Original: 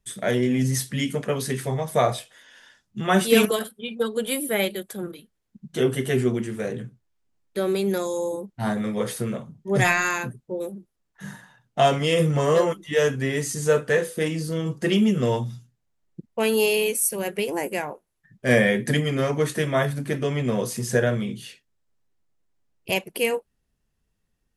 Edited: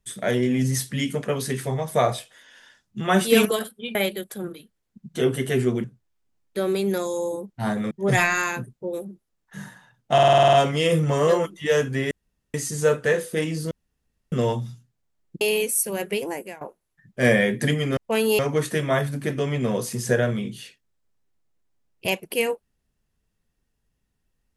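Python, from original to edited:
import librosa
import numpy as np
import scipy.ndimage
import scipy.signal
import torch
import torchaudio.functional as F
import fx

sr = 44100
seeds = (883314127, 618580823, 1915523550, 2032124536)

y = fx.edit(x, sr, fx.cut(start_s=3.95, length_s=0.59),
    fx.cut(start_s=6.43, length_s=0.41),
    fx.cut(start_s=8.91, length_s=0.67),
    fx.stutter(start_s=11.8, slice_s=0.05, count=9),
    fx.insert_room_tone(at_s=13.38, length_s=0.43),
    fx.room_tone_fill(start_s=14.55, length_s=0.61),
    fx.move(start_s=16.25, length_s=0.42, to_s=19.23),
    fx.fade_out_to(start_s=17.42, length_s=0.45, floor_db=-19.0), tone=tone)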